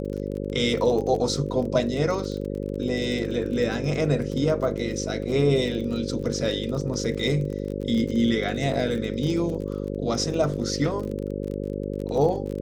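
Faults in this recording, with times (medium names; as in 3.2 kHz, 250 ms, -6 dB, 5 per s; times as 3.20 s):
buzz 50 Hz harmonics 11 -30 dBFS
crackle 28 per s -31 dBFS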